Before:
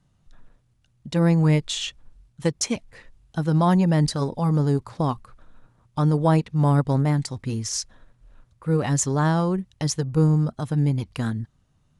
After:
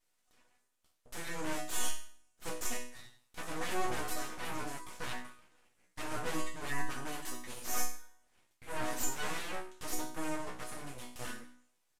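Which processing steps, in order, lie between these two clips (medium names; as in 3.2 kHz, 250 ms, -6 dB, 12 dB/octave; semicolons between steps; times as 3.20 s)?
tilt EQ +2.5 dB/octave; hum notches 50/100/150/200/250 Hz; Chebyshev shaper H 8 -8 dB, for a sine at -5 dBFS; 6.28–7.63 s: comb 7.1 ms, depth 73%; hard clipper -14.5 dBFS, distortion -9 dB; overdrive pedal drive 19 dB, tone 1.6 kHz, clips at -14.5 dBFS; resonant high shelf 5.6 kHz +9.5 dB, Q 1.5; chord resonator B3 major, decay 0.5 s; full-wave rectifier; resampled via 32 kHz; trim +8 dB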